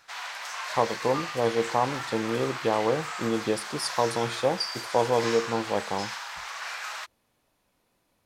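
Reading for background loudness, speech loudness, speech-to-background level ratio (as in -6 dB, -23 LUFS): -34.0 LUFS, -28.0 LUFS, 6.0 dB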